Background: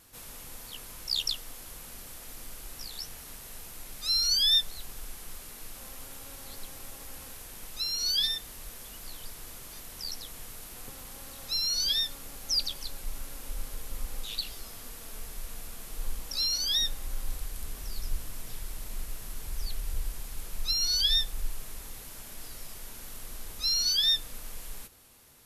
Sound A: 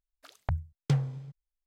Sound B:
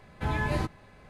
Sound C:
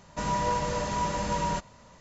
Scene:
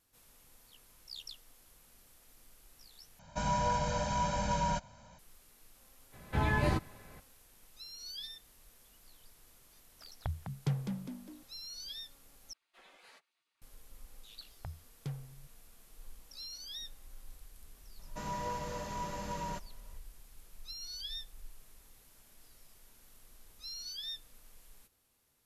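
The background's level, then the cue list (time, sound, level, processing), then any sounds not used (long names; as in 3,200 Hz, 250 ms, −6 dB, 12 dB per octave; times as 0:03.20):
background −17 dB
0:03.19: overwrite with C −6 dB + comb filter 1.3 ms, depth 88%
0:06.12: mix in B −1 dB, fades 0.02 s
0:09.77: mix in A −7 dB + echo with shifted repeats 203 ms, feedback 44%, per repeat +55 Hz, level −6 dB
0:12.53: overwrite with B −17 dB + gate on every frequency bin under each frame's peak −20 dB weak
0:14.16: mix in A −14.5 dB
0:17.99: mix in C −10.5 dB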